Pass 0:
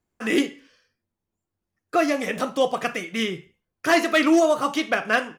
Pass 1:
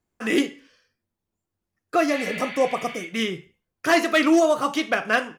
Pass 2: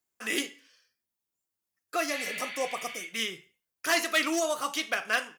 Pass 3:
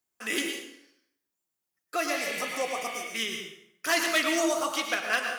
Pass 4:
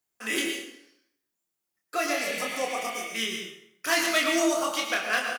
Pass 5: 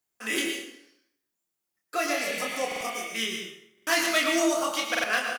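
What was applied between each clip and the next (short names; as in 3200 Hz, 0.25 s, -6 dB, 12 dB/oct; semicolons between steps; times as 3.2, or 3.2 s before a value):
spectral repair 2.15–2.98, 1300–4800 Hz both
tilt +3.5 dB/oct; gain -8 dB
plate-style reverb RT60 0.73 s, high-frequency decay 0.8×, pre-delay 90 ms, DRR 3.5 dB
doubler 27 ms -4 dB
stuck buffer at 2.67/3.73/4.9, samples 2048, times 2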